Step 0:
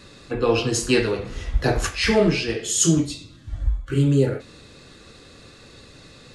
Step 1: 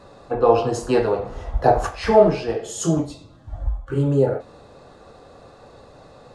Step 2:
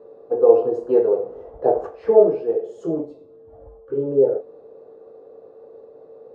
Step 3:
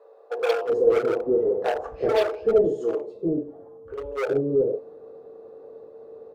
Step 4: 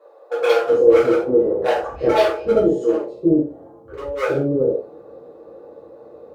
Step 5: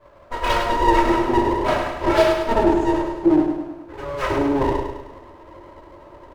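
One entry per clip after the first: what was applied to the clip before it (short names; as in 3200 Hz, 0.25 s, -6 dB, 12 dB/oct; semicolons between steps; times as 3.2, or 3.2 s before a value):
EQ curve 330 Hz 0 dB, 750 Hz +15 dB, 2200 Hz -8 dB; gain -2 dB
whine 450 Hz -49 dBFS; band-pass 430 Hz, Q 1.6; bell 450 Hz +7.5 dB 0.72 oct; gain -2.5 dB
in parallel at -5 dB: wavefolder -18 dBFS; on the sum: bands offset in time highs, lows 0.38 s, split 540 Hz; gain -2.5 dB
non-linear reverb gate 0.12 s falling, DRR -6 dB
minimum comb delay 3.1 ms; on a send: feedback echo 0.103 s, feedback 51%, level -6 dB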